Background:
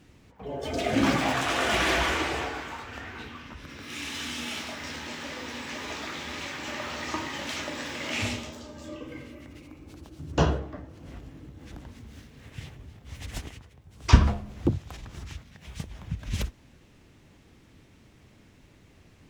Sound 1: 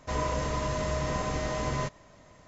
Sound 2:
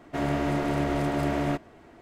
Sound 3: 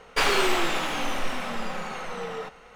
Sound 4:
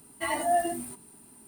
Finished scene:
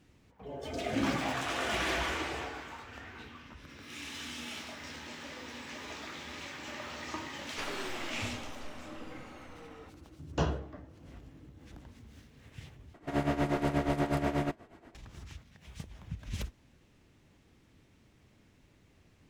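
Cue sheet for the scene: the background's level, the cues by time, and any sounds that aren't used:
background -7.5 dB
7.41 add 3 -17.5 dB
12.94 replace with 2 -0.5 dB + tremolo 8.3 Hz, depth 76%
not used: 1, 4

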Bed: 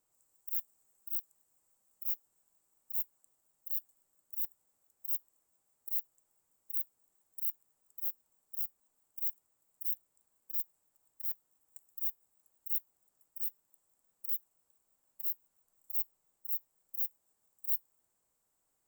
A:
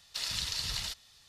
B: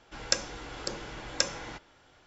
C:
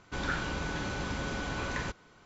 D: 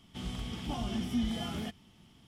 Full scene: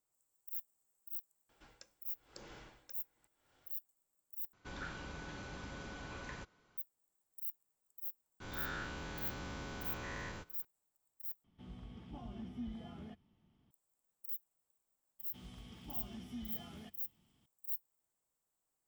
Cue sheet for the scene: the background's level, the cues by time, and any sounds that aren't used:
bed -7.5 dB
1.49 add B -11.5 dB + dB-linear tremolo 0.95 Hz, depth 30 dB
4.53 replace with C -12.5 dB
8.4 add C -15.5 dB + spectral dilation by 0.24 s
11.44 replace with D -12 dB + LPF 1100 Hz 6 dB/oct
15.19 add D -14.5 dB
not used: A

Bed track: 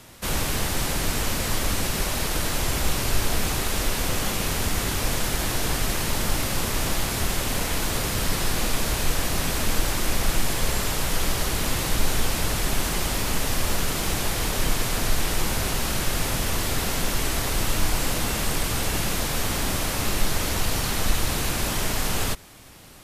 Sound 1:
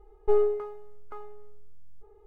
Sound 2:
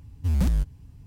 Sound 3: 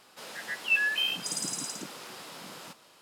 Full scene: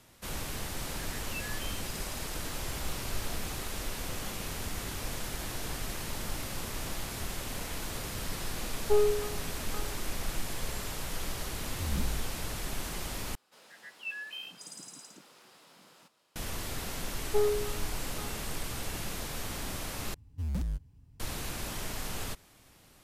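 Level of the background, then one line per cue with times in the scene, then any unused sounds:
bed track -12 dB
0.64 add 3 -17 dB + recorder AGC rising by 50 dB/s
8.62 add 1 -2.5 dB
11.56 add 2 -12.5 dB + spectral swells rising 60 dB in 0.44 s
13.35 replace with 3 -13.5 dB
17.06 add 1 -5 dB
20.14 replace with 2 -10.5 dB

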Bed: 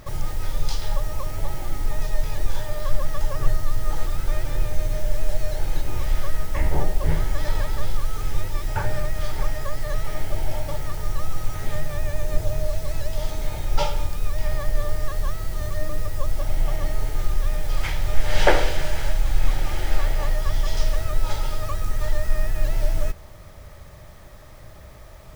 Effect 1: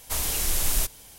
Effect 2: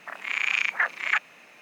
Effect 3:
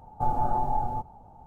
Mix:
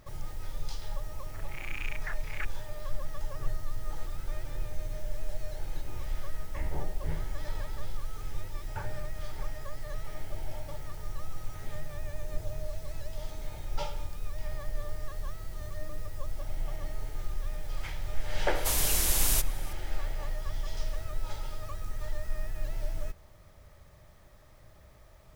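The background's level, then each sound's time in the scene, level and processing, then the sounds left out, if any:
bed -12 dB
1.27 add 2 -16 dB
18.55 add 1 -1 dB
not used: 3

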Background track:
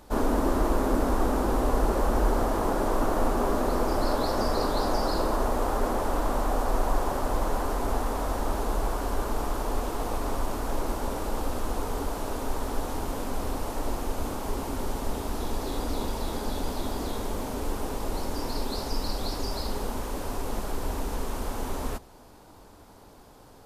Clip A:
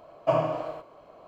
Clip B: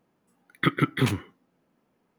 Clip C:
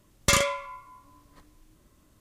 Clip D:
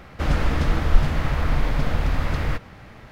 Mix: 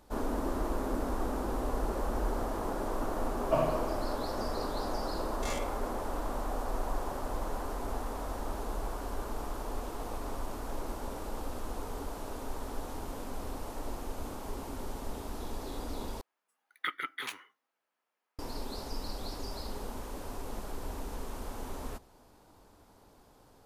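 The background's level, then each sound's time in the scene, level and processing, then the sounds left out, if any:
background track -8.5 dB
3.24 add A -5 dB
5.17 add C -15.5 dB + stepped spectrum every 50 ms
16.21 replace with B -7 dB + HPF 940 Hz
not used: D

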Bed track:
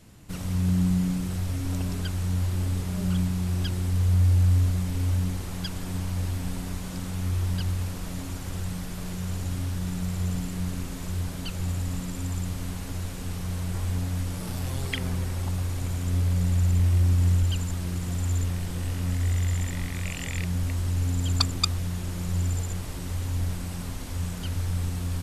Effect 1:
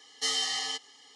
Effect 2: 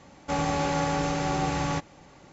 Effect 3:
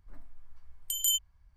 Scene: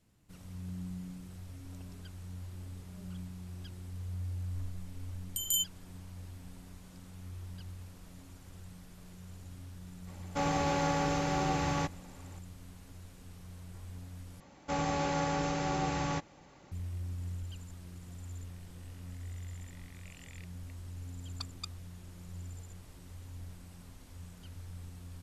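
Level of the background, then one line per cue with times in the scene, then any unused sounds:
bed track -18 dB
4.46 add 3 -3 dB
10.07 add 2 -4 dB
14.4 replace with 2 -5.5 dB
not used: 1

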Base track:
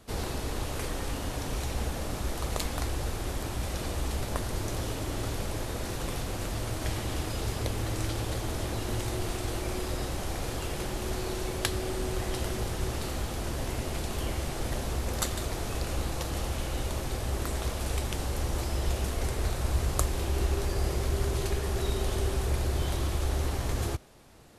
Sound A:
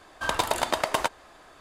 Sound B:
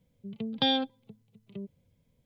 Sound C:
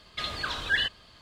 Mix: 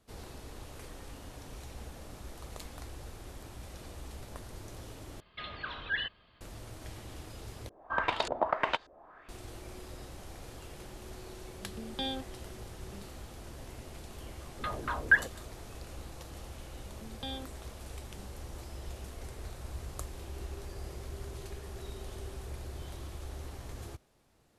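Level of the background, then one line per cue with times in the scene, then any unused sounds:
base track -13.5 dB
5.2 replace with C -7 dB + LPF 3300 Hz 24 dB/oct
7.69 replace with A -6.5 dB + LFO low-pass saw up 1.7 Hz 430–5400 Hz
11.37 add B -10 dB
14.4 add C -1.5 dB + LFO low-pass saw down 4.2 Hz 250–1800 Hz
16.61 add B -15 dB

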